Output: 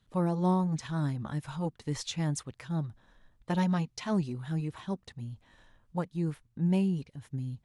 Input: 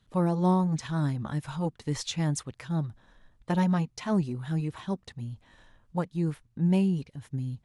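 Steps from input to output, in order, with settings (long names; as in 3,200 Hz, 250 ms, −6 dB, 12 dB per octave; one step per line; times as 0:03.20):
0:03.51–0:04.42: parametric band 4,100 Hz +4 dB 1.8 octaves
level −3 dB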